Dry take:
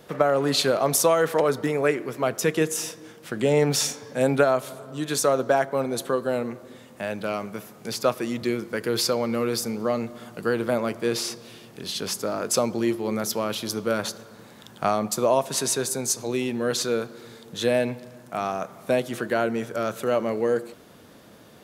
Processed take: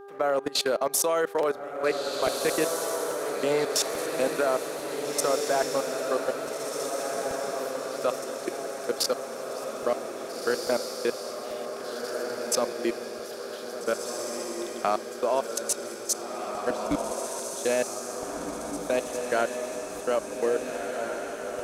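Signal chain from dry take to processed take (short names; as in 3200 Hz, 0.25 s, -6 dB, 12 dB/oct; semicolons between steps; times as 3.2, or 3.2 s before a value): HPF 290 Hz 12 dB/oct; level quantiser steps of 24 dB; buzz 400 Hz, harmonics 4, -45 dBFS -8 dB/oct; 16.7–17.12 frequency shift -180 Hz; on a send: diffused feedback echo 1.748 s, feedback 58%, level -3.5 dB; on the sum: crackling interface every 0.84 s, samples 64, repeat, from 0.59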